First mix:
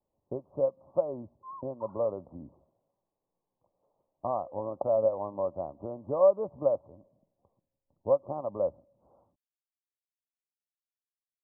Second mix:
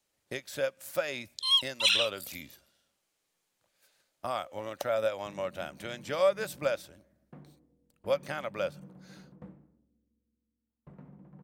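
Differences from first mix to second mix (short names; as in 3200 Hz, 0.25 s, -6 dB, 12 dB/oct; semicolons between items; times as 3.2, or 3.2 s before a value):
speech -4.0 dB; second sound: unmuted; master: remove steep low-pass 1100 Hz 96 dB/oct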